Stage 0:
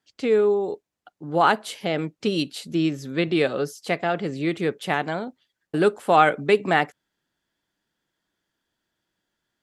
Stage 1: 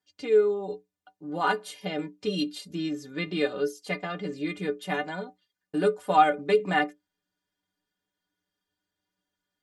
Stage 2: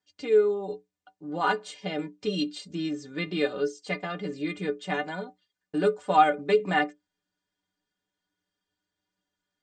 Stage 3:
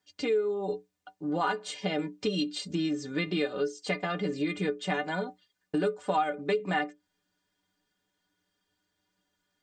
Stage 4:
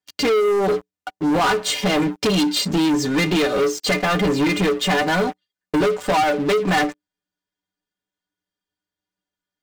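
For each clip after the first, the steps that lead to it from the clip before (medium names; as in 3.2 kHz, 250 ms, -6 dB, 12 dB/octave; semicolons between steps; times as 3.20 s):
inharmonic resonator 88 Hz, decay 0.26 s, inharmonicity 0.03; trim +2.5 dB
steep low-pass 8.6 kHz 96 dB/octave
compression 4:1, threshold -33 dBFS, peak gain reduction 16 dB; trim +6 dB
waveshaping leveller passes 5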